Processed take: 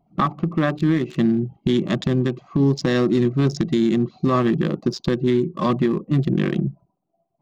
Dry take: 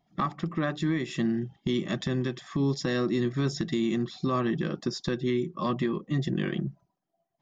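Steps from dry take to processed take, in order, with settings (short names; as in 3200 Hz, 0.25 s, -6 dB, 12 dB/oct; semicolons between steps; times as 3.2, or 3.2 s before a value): Wiener smoothing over 25 samples; gain +9 dB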